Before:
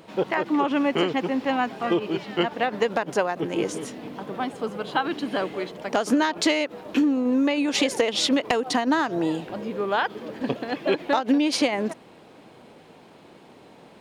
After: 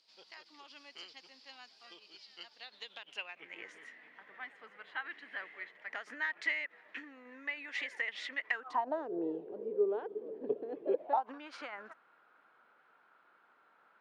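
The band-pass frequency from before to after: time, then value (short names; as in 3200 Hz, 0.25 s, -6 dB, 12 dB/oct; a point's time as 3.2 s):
band-pass, Q 7.8
2.54 s 4800 Hz
3.62 s 1900 Hz
8.51 s 1900 Hz
9.09 s 420 Hz
10.87 s 420 Hz
11.4 s 1400 Hz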